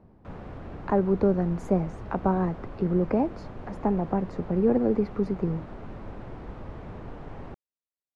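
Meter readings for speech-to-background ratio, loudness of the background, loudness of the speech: 15.0 dB, -42.0 LUFS, -27.0 LUFS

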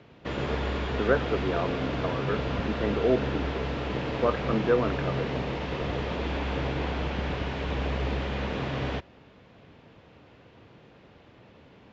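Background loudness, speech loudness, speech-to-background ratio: -31.0 LUFS, -30.0 LUFS, 1.0 dB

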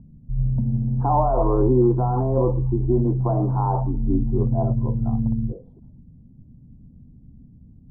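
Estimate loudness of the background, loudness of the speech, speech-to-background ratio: -24.5 LUFS, -24.0 LUFS, 0.5 dB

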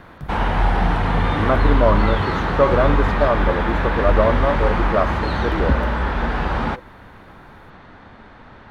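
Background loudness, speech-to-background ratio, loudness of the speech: -20.5 LUFS, -1.0 dB, -21.5 LUFS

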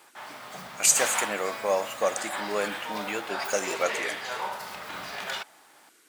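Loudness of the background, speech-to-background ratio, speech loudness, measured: -34.0 LUFS, 6.5 dB, -27.5 LUFS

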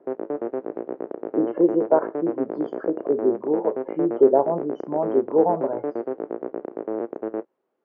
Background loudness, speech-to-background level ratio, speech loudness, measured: -30.5 LUFS, 7.5 dB, -23.0 LUFS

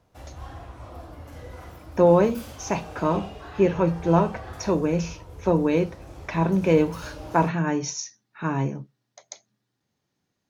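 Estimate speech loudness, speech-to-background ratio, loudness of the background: -24.0 LUFS, 17.5 dB, -41.5 LUFS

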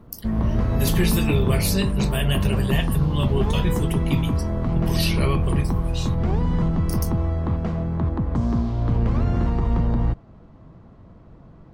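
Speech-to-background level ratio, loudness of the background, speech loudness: -3.0 dB, -23.5 LUFS, -26.5 LUFS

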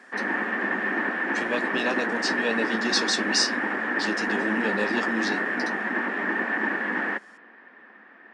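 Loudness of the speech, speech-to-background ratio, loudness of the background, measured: -28.0 LUFS, -2.0 dB, -26.0 LUFS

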